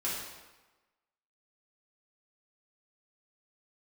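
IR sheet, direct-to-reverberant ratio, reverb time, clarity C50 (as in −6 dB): −8.0 dB, 1.2 s, 0.5 dB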